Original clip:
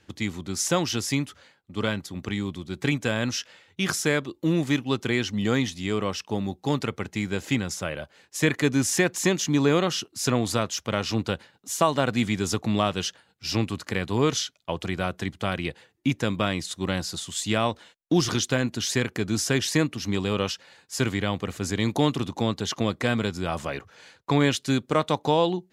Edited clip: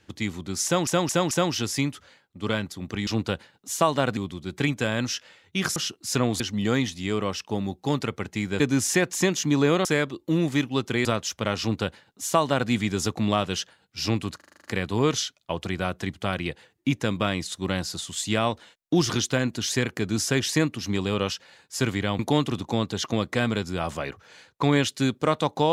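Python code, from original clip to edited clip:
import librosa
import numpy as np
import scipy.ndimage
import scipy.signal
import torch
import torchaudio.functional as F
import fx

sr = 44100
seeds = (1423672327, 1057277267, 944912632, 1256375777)

y = fx.edit(x, sr, fx.stutter(start_s=0.65, slice_s=0.22, count=4),
    fx.swap(start_s=4.0, length_s=1.2, other_s=9.88, other_length_s=0.64),
    fx.cut(start_s=7.4, length_s=1.23),
    fx.duplicate(start_s=11.07, length_s=1.1, to_s=2.41),
    fx.stutter(start_s=13.84, slice_s=0.04, count=8),
    fx.cut(start_s=21.38, length_s=0.49), tone=tone)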